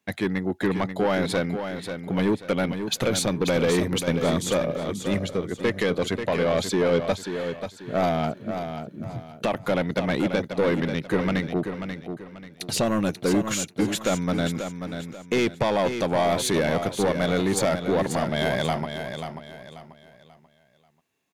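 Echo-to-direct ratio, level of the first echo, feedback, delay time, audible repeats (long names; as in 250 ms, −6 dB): −7.5 dB, −8.0 dB, 33%, 537 ms, 3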